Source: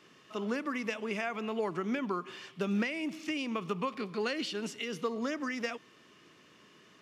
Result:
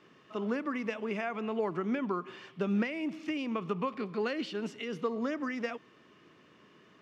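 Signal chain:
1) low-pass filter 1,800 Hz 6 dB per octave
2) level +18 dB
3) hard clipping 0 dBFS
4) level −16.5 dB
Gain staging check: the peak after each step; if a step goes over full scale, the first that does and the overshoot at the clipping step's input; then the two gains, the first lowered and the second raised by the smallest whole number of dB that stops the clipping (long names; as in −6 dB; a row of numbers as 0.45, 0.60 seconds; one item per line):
−21.0, −3.0, −3.0, −19.5 dBFS
no step passes full scale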